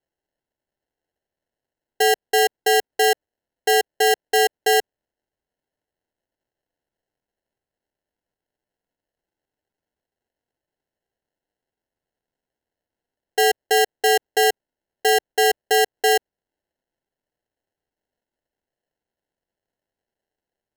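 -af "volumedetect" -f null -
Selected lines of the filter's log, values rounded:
mean_volume: -25.5 dB
max_volume: -6.4 dB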